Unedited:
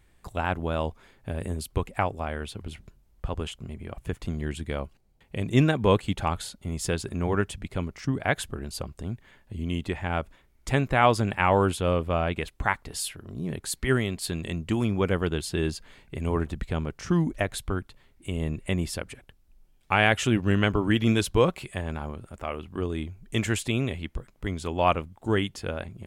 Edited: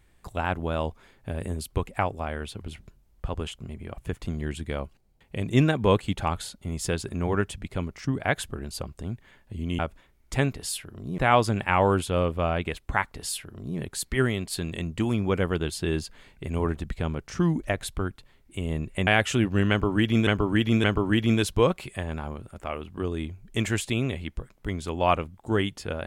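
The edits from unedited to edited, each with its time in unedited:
9.79–10.14 cut
12.85–13.49 copy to 10.89
18.78–19.99 cut
20.62–21.19 loop, 3 plays

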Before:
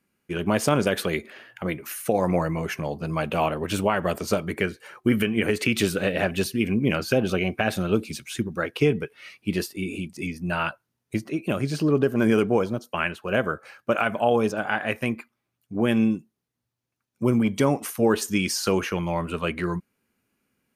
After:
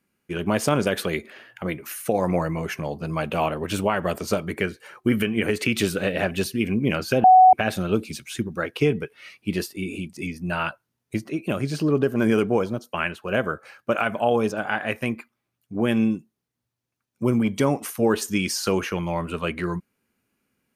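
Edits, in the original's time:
7.24–7.53 bleep 745 Hz -8 dBFS

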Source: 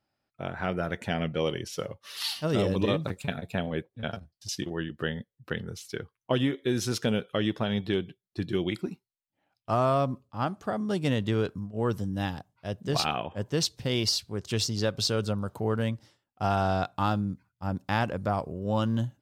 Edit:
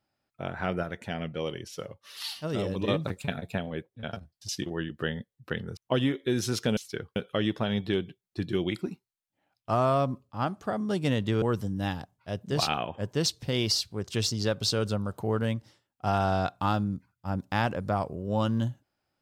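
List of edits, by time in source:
0.83–2.88 gain -4.5 dB
3.58–4.13 gain -3.5 dB
5.77–6.16 move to 7.16
11.42–11.79 cut

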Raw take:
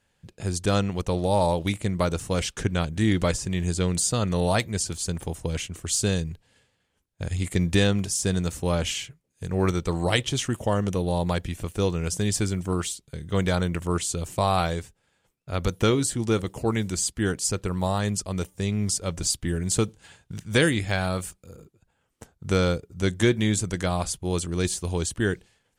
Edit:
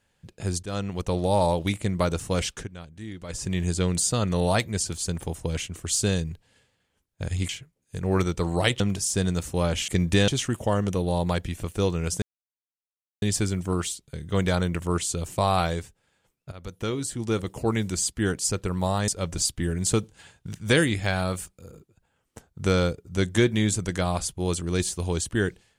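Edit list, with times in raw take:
0.63–1.27 fade in equal-power, from -15.5 dB
2.53–3.43 dip -16 dB, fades 0.15 s
7.49–7.89 swap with 8.97–10.28
12.22 insert silence 1.00 s
15.52–16.64 fade in, from -18.5 dB
18.08–18.93 cut

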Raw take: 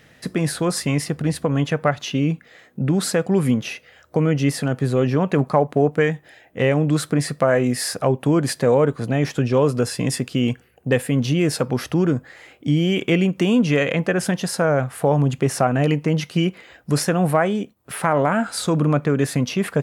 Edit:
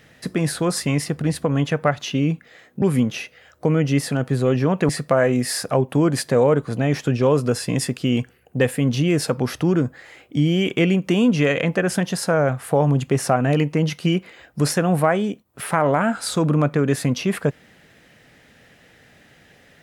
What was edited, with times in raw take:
2.82–3.33 cut
5.4–7.2 cut

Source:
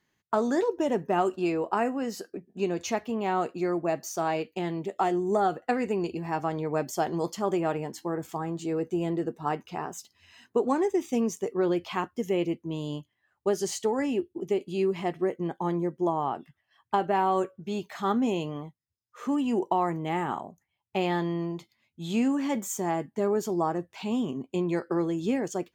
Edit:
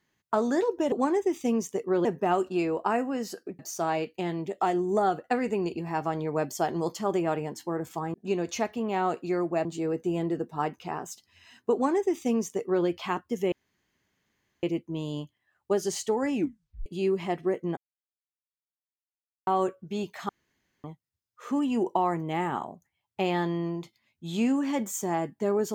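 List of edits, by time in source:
2.46–3.97 move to 8.52
10.6–11.73 copy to 0.92
12.39 insert room tone 1.11 s
14.11 tape stop 0.51 s
15.53–17.23 mute
18.05–18.6 room tone

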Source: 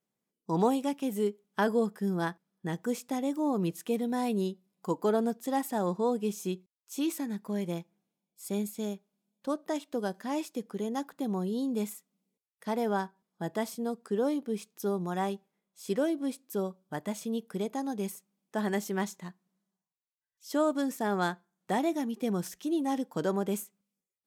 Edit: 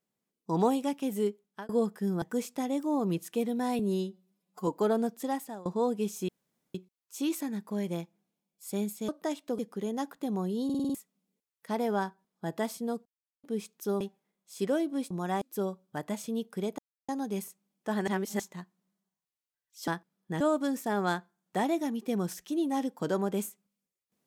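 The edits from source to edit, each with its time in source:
1.3–1.69 fade out
2.22–2.75 move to 20.55
4.32–4.91 stretch 1.5×
5.44–5.89 fade out, to -24 dB
6.52 insert room tone 0.46 s
8.86–9.53 cut
10.03–10.56 cut
11.62 stutter in place 0.05 s, 6 plays
14.03–14.41 mute
14.98–15.29 move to 16.39
17.76 insert silence 0.30 s
18.75–19.07 reverse

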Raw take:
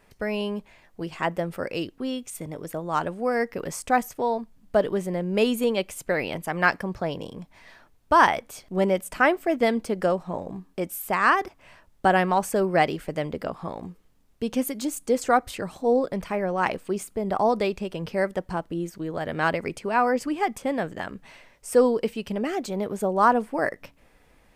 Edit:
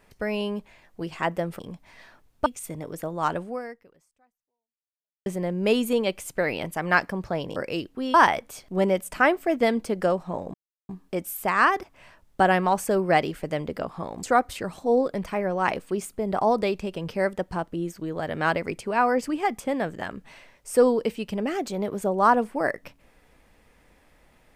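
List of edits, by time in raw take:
1.59–2.17 swap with 7.27–8.14
3.14–4.97 fade out exponential
10.54 insert silence 0.35 s
13.88–15.21 cut

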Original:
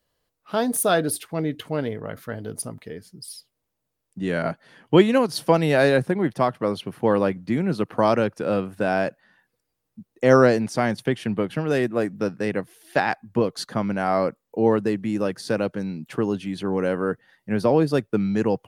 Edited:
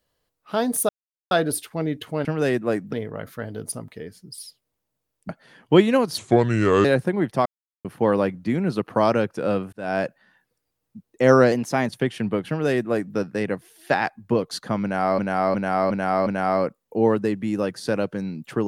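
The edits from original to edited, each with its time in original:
0.89 insert silence 0.42 s
4.19–4.5 cut
5.39–5.87 speed 72%
6.48–6.87 mute
8.75–9.02 fade in
10.54–10.94 speed 109%
11.54–12.22 copy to 1.83
13.88–14.24 loop, 5 plays

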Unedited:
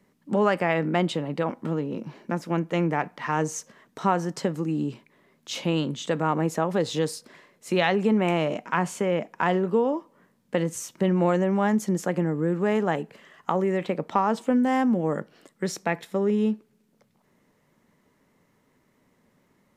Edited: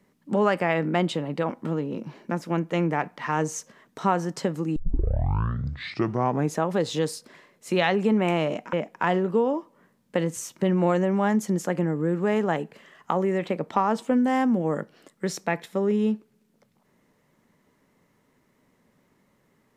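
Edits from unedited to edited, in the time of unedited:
4.76 tape start 1.84 s
8.73–9.12 cut

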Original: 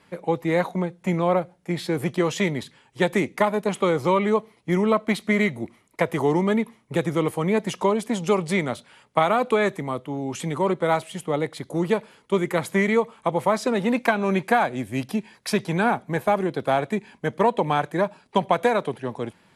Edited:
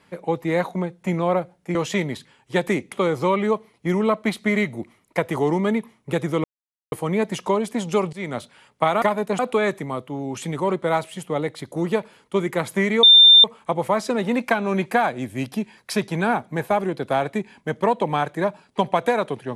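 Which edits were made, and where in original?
1.75–2.21 cut
3.38–3.75 move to 9.37
7.27 insert silence 0.48 s
8.48–8.73 fade in, from -22 dB
13.01 add tone 3590 Hz -6.5 dBFS 0.41 s

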